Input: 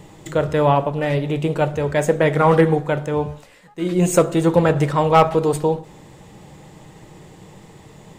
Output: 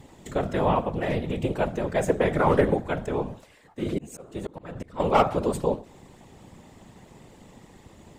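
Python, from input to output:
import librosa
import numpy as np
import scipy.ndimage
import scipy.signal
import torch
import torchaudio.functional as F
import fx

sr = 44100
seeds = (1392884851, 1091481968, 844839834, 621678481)

y = fx.whisperise(x, sr, seeds[0])
y = fx.auto_swell(y, sr, attack_ms=611.0, at=(3.82, 5.0))
y = y * librosa.db_to_amplitude(-6.5)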